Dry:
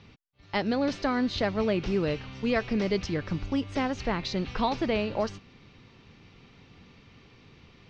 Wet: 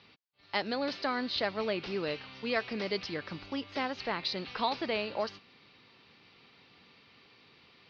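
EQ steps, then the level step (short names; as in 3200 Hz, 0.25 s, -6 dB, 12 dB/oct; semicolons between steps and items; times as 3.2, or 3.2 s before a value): HPF 680 Hz 6 dB/oct; air absorption 290 m; bell 4700 Hz +14 dB 0.89 oct; 0.0 dB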